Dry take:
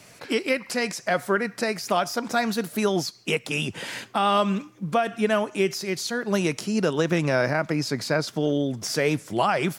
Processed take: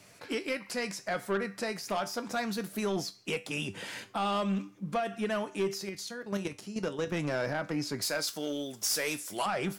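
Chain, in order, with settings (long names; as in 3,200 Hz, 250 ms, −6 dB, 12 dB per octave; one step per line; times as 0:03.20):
0:05.89–0:07.14: output level in coarse steps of 11 dB
0:08.02–0:09.46: RIAA equalisation recording
tuned comb filter 98 Hz, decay 0.24 s, harmonics all, mix 60%
soft clipping −21.5 dBFS, distortion −15 dB
level −2 dB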